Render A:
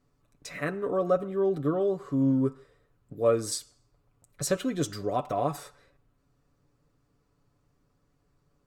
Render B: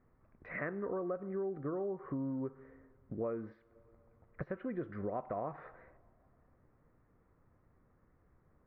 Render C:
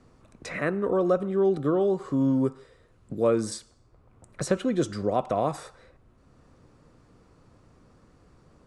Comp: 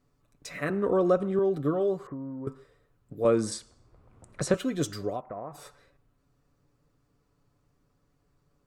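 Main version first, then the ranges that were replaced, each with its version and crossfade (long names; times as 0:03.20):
A
0:00.70–0:01.39: punch in from C
0:02.07–0:02.47: punch in from B
0:03.25–0:04.54: punch in from C
0:05.14–0:05.59: punch in from B, crossfade 0.16 s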